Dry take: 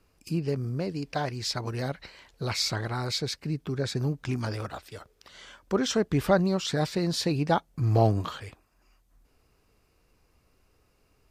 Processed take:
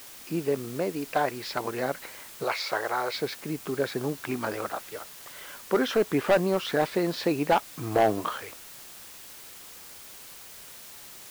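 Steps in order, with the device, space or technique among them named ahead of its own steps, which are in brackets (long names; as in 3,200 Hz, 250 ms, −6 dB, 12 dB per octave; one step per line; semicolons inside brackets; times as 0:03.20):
aircraft radio (band-pass filter 330–2,400 Hz; hard clipping −21.5 dBFS, distortion −11 dB; white noise bed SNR 16 dB)
0:02.44–0:03.13: low shelf with overshoot 350 Hz −9 dB, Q 1.5
level +6 dB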